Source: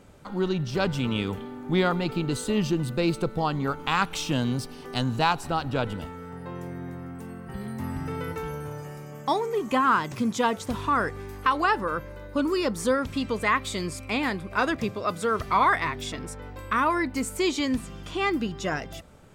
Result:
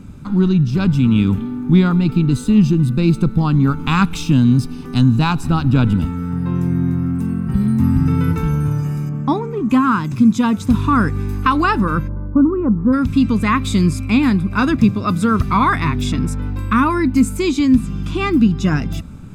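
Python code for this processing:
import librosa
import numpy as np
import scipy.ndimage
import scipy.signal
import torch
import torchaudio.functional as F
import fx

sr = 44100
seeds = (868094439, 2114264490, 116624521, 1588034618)

y = fx.lowpass(x, sr, hz=1300.0, slope=6, at=(9.09, 9.7))
y = fx.lowpass(y, sr, hz=1200.0, slope=24, at=(12.07, 12.92), fade=0.02)
y = fx.low_shelf_res(y, sr, hz=340.0, db=10.0, q=1.5)
y = y + 0.37 * np.pad(y, (int(0.8 * sr / 1000.0), 0))[:len(y)]
y = fx.rider(y, sr, range_db=3, speed_s=0.5)
y = y * librosa.db_to_amplitude(3.5)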